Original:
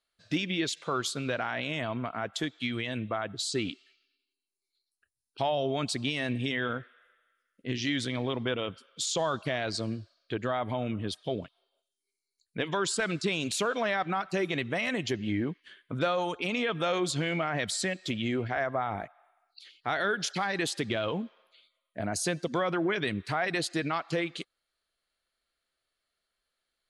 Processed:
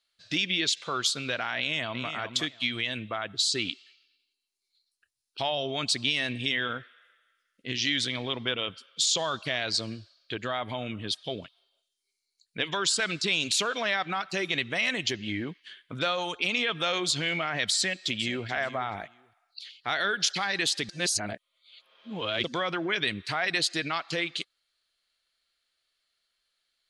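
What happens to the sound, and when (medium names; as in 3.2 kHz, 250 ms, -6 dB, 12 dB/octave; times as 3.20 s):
1.58–2.10 s: echo throw 360 ms, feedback 15%, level -7.5 dB
17.76–18.47 s: echo throw 430 ms, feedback 15%, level -15 dB
20.89–22.44 s: reverse
whole clip: peaking EQ 4.2 kHz +12.5 dB 2.7 oct; trim -4 dB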